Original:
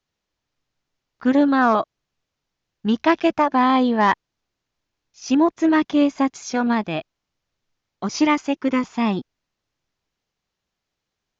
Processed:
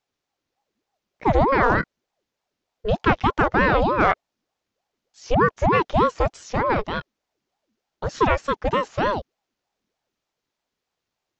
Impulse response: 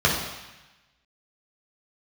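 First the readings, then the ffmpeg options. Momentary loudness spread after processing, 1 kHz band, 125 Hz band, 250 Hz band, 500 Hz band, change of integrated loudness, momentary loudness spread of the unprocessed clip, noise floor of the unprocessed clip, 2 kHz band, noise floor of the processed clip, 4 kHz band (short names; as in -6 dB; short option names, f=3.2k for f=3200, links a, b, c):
12 LU, +0.5 dB, +10.0 dB, -8.5 dB, +2.0 dB, -1.5 dB, 12 LU, -82 dBFS, +2.0 dB, -83 dBFS, -3.0 dB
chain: -filter_complex "[0:a]acrossover=split=3000[a][b];[b]acompressor=threshold=-40dB:ratio=4:attack=1:release=60[c];[a][c]amix=inputs=2:normalize=0,aeval=exprs='val(0)*sin(2*PI*520*n/s+520*0.6/3.3*sin(2*PI*3.3*n/s))':c=same,volume=1.5dB"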